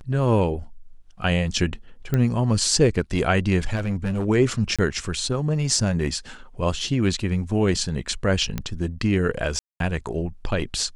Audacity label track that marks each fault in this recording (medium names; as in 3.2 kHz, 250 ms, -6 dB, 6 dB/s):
2.140000	2.140000	pop -11 dBFS
3.750000	4.260000	clipped -20.5 dBFS
4.760000	4.790000	dropout 26 ms
8.580000	8.580000	pop -13 dBFS
9.590000	9.800000	dropout 212 ms